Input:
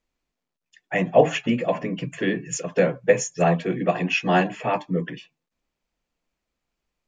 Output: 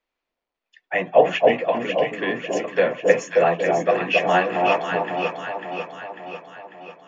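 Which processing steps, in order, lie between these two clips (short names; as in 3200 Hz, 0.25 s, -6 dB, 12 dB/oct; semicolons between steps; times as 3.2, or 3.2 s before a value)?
three-band isolator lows -15 dB, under 360 Hz, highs -20 dB, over 4600 Hz; on a send: echo with dull and thin repeats by turns 0.273 s, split 970 Hz, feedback 74%, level -2 dB; on the sum: gain +2.5 dB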